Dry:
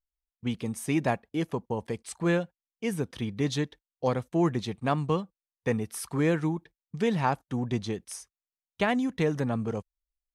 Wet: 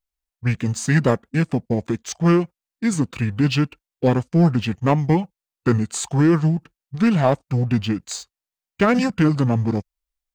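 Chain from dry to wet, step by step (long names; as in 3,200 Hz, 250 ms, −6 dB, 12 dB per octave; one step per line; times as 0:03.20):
leveller curve on the samples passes 1
formants moved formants −5 semitones
level +6.5 dB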